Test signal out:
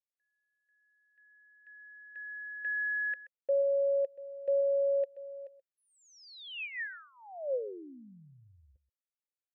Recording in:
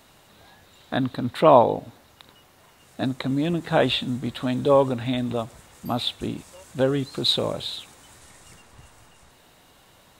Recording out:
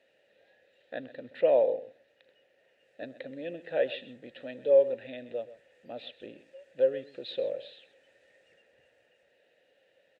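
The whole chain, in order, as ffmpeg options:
-filter_complex "[0:a]acrossover=split=5900[a][b];[b]acompressor=threshold=-54dB:ratio=4:attack=1:release=60[c];[a][c]amix=inputs=2:normalize=0,asplit=3[d][e][f];[d]bandpass=f=530:t=q:w=8,volume=0dB[g];[e]bandpass=f=1.84k:t=q:w=8,volume=-6dB[h];[f]bandpass=f=2.48k:t=q:w=8,volume=-9dB[i];[g][h][i]amix=inputs=3:normalize=0,asplit=2[j][k];[k]adelay=128.3,volume=-16dB,highshelf=f=4k:g=-2.89[l];[j][l]amix=inputs=2:normalize=0"

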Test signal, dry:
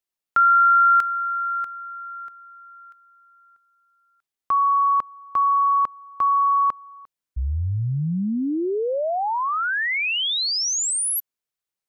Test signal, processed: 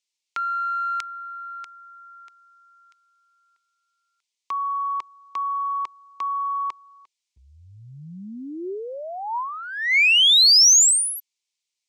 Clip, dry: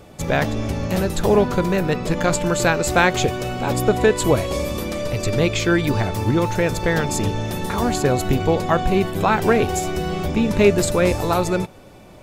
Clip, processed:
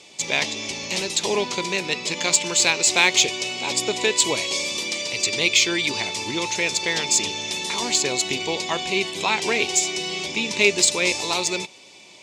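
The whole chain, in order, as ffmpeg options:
-af "highpass=200,equalizer=f=380:t=q:w=4:g=5,equalizer=f=960:t=q:w=4:g=9,equalizer=f=2.2k:t=q:w=4:g=5,lowpass=f=7.3k:w=0.5412,lowpass=f=7.3k:w=1.3066,aexciter=amount=7.8:drive=6.8:freq=2.2k,volume=-10.5dB"

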